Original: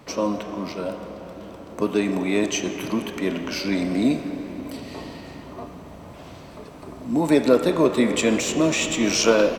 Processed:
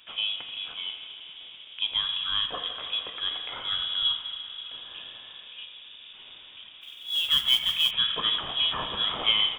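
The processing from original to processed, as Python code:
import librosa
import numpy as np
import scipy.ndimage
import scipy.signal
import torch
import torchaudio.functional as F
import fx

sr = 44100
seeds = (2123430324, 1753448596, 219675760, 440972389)

y = fx.echo_wet_highpass(x, sr, ms=82, feedback_pct=78, hz=1700.0, wet_db=-12.5)
y = fx.freq_invert(y, sr, carrier_hz=3600)
y = fx.mod_noise(y, sr, seeds[0], snr_db=19, at=(6.81, 7.91))
y = y * 10.0 ** (-6.5 / 20.0)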